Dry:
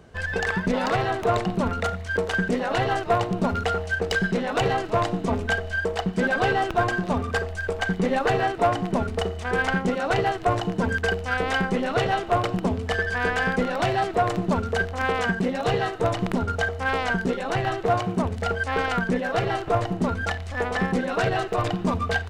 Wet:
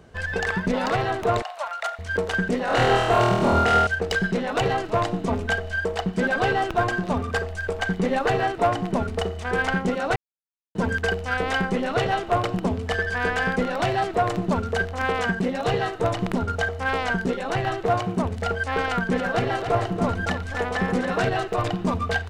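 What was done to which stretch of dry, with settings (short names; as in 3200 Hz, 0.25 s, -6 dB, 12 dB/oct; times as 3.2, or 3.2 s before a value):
1.42–1.99 elliptic high-pass 610 Hz
2.65–3.87 flutter echo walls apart 4.3 m, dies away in 1.2 s
10.16–10.75 mute
18.83–21.3 echo 0.281 s -7 dB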